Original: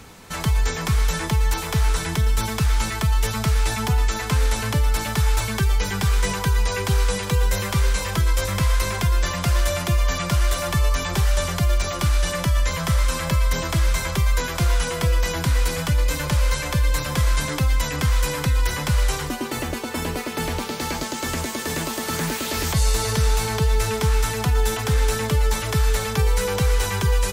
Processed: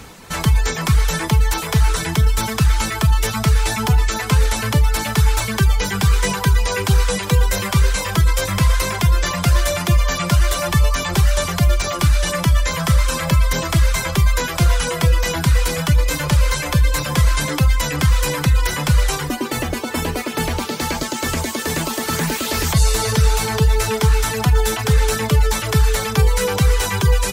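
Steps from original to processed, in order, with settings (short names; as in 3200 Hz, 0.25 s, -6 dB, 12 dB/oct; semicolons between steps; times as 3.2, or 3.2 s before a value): reverb removal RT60 0.6 s; on a send: reverb, pre-delay 3 ms, DRR 16 dB; on the sum: gain +5.5 dB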